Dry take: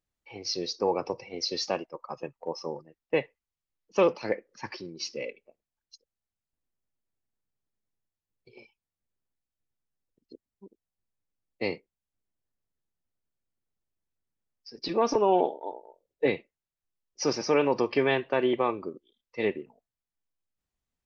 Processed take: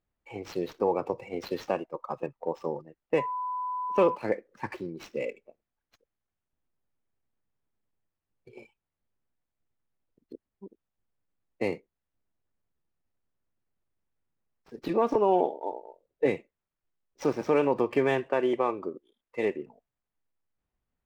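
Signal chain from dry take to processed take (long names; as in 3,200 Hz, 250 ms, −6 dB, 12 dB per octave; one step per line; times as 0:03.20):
running median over 9 samples
high-shelf EQ 4,000 Hz −12 dB
in parallel at +2 dB: downward compressor, threshold −32 dBFS, peak gain reduction 13.5 dB
0:03.17–0:04.14: on the sum: steady tone 1,000 Hz −27 dBFS
0:18.27–0:19.59: bass and treble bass −6 dB, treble −1 dB
level −2.5 dB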